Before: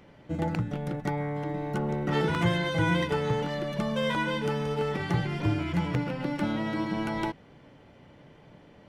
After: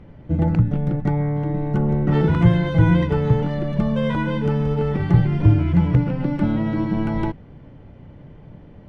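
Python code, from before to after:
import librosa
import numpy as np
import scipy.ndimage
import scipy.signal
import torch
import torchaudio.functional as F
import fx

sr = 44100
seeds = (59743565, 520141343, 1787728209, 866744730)

y = fx.riaa(x, sr, side='playback')
y = y * 10.0 ** (2.0 / 20.0)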